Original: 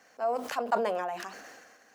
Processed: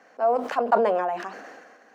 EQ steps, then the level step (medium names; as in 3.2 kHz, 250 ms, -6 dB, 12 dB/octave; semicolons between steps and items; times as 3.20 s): high-pass 200 Hz 12 dB/octave; low-pass 1.2 kHz 6 dB/octave; +9.0 dB